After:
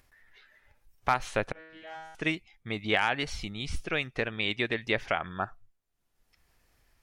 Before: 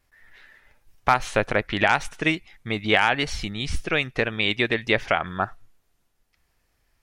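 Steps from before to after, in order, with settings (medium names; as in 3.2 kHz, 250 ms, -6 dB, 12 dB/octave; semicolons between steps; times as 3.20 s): spectral noise reduction 10 dB; upward compressor, threshold -43 dBFS; 1.52–2.15 s: feedback comb 160 Hz, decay 1.2 s, mix 100%; trim -7 dB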